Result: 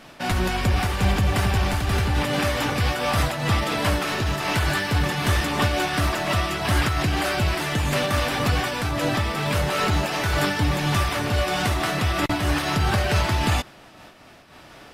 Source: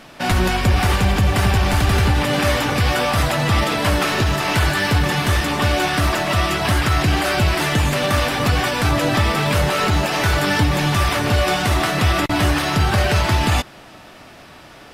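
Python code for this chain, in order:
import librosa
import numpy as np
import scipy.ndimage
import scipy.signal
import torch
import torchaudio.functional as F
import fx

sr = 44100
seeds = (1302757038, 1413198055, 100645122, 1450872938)

y = fx.am_noise(x, sr, seeds[0], hz=5.7, depth_pct=65)
y = y * librosa.db_to_amplitude(-1.5)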